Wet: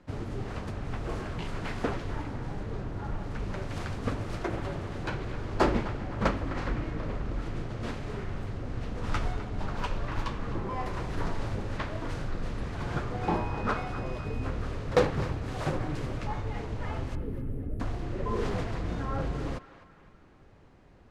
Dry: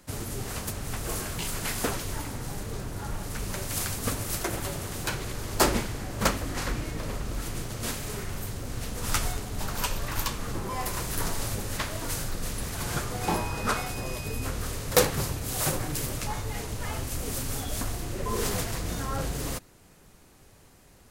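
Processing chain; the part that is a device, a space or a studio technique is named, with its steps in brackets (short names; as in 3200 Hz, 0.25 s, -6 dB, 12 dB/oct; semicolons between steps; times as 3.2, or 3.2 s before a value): 17.15–17.8 inverse Chebyshev band-stop 1300–5200 Hz, stop band 60 dB; phone in a pocket (LPF 3900 Hz 12 dB/oct; bell 310 Hz +2 dB 0.28 oct; high shelf 2200 Hz -10 dB); narrowing echo 0.256 s, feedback 54%, band-pass 1600 Hz, level -12 dB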